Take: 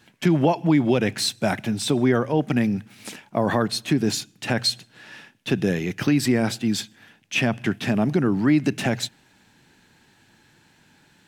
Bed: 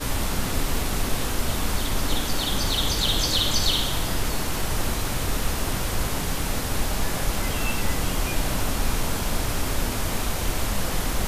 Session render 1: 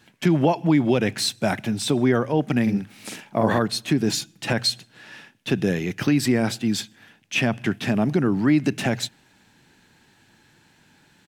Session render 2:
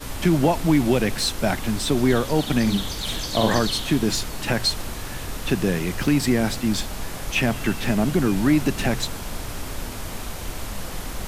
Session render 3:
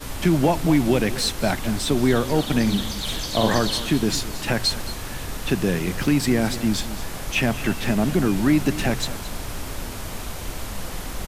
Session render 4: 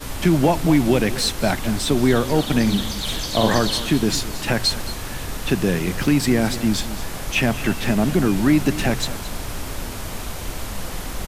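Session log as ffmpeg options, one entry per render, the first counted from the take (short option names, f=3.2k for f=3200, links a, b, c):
-filter_complex "[0:a]asplit=3[a][b][c];[a]afade=t=out:st=2.66:d=0.02[d];[b]asplit=2[e][f];[f]adelay=45,volume=-3dB[g];[e][g]amix=inputs=2:normalize=0,afade=t=in:st=2.66:d=0.02,afade=t=out:st=3.58:d=0.02[h];[c]afade=t=in:st=3.58:d=0.02[i];[d][h][i]amix=inputs=3:normalize=0,asettb=1/sr,asplit=3[j][k][l];[j]atrim=end=4.094[m];[k]atrim=start=4.09:end=4.53,asetpts=PTS-STARTPTS,afade=t=in:d=0.004:c=qsin,afade=t=out:st=0.436:d=0.004:c=qsin,aecho=1:1:6:0.59,atrim=end_sample=19404[n];[l]atrim=start=4.526[o];[m][n]acrossfade=d=0.004:c1=hsin:c2=qsin[p];[p][o]acrossfade=d=0.004:c1=qsin:c2=hsin"
-filter_complex "[1:a]volume=-6dB[a];[0:a][a]amix=inputs=2:normalize=0"
-af "aecho=1:1:220:0.178"
-af "volume=2dB"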